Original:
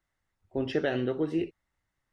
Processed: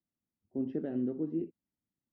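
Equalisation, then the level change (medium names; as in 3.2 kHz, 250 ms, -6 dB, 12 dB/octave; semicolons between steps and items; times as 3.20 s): band-pass filter 230 Hz, Q 2.7; +2.0 dB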